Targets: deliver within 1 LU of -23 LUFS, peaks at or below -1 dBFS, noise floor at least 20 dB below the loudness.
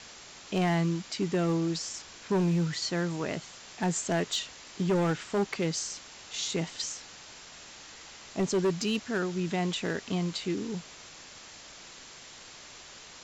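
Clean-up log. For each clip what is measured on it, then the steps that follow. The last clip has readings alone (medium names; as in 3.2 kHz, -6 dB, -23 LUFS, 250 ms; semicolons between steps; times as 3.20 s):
clipped samples 1.5%; clipping level -22.0 dBFS; noise floor -49 dBFS; noise floor target -51 dBFS; loudness -31.0 LUFS; peak level -22.0 dBFS; loudness target -23.0 LUFS
-> clip repair -22 dBFS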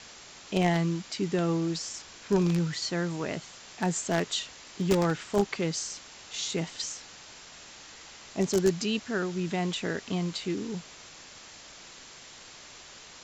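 clipped samples 0.0%; noise floor -49 dBFS; noise floor target -50 dBFS
-> noise print and reduce 6 dB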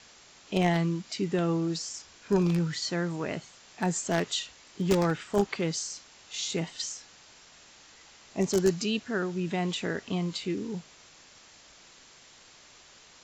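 noise floor -55 dBFS; loudness -30.0 LUFS; peak level -13.0 dBFS; loudness target -23.0 LUFS
-> trim +7 dB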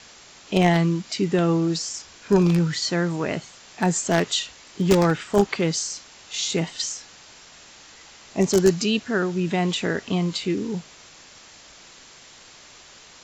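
loudness -23.0 LUFS; peak level -6.0 dBFS; noise floor -48 dBFS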